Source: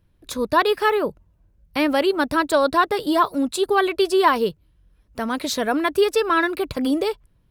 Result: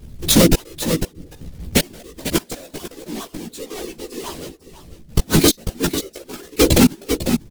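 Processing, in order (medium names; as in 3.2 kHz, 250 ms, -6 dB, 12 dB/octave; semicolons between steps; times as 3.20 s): square wave that keeps the level; peaking EQ 1.1 kHz -14.5 dB 2.5 oct; hum notches 50/100/150/200/250/300/350/400 Hz; 2.97–5.21 s: waveshaping leveller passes 3; transient shaper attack -3 dB, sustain -8 dB; inverted gate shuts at -15 dBFS, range -40 dB; whisper effect; chorus voices 6, 0.66 Hz, delay 15 ms, depth 3.4 ms; delay 496 ms -14.5 dB; loudness maximiser +26.5 dB; vibrato with a chosen wave saw down 5 Hz, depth 100 cents; trim -1 dB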